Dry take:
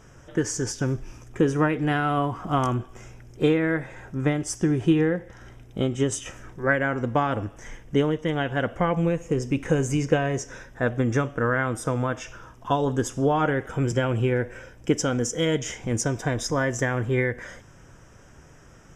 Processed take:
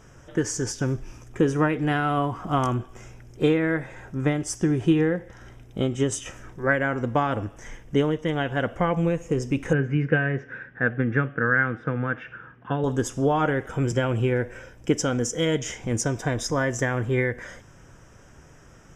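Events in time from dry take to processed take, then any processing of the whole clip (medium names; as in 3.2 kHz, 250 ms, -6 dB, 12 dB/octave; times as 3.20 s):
9.73–12.84 s: cabinet simulation 120–2600 Hz, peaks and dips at 150 Hz +5 dB, 350 Hz -3 dB, 640 Hz -9 dB, 980 Hz -9 dB, 1.6 kHz +9 dB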